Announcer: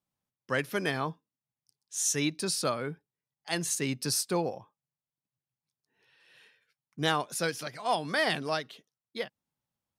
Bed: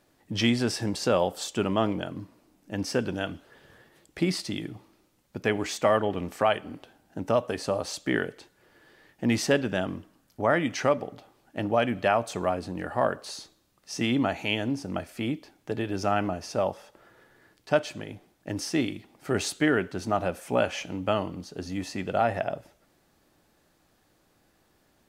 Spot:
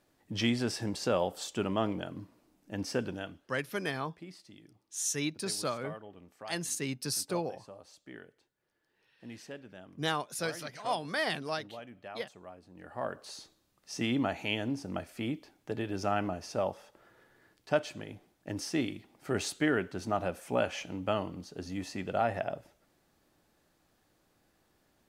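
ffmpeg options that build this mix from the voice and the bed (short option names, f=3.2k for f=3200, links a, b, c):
-filter_complex "[0:a]adelay=3000,volume=-4dB[a];[1:a]volume=11.5dB,afade=t=out:st=3.01:d=0.53:silence=0.149624,afade=t=in:st=12.69:d=0.83:silence=0.141254[b];[a][b]amix=inputs=2:normalize=0"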